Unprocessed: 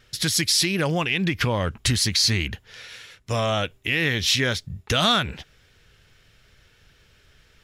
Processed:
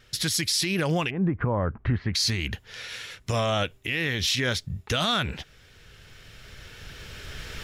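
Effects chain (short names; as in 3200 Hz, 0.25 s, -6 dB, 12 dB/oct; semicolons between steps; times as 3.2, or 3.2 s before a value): recorder AGC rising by 8.2 dB/s; 1.09–2.14 LPF 1100 Hz -> 1900 Hz 24 dB/oct; limiter -15.5 dBFS, peak gain reduction 7 dB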